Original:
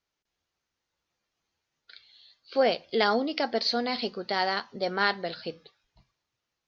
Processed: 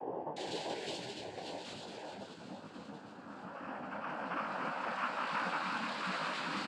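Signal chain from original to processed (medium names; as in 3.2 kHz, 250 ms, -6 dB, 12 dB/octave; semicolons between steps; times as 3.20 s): expander on every frequency bin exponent 1.5; chord resonator G#2 fifth, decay 0.23 s; compression, threshold -38 dBFS, peak gain reduction 7.5 dB; Paulstretch 35×, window 0.10 s, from 4.86 s; doubling 45 ms -4 dB; three bands offset in time mids, lows, highs 240/360 ms, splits 340/1200 Hz; frequency shift -170 Hz; noise-vocoded speech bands 8; detune thickener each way 39 cents; trim +9 dB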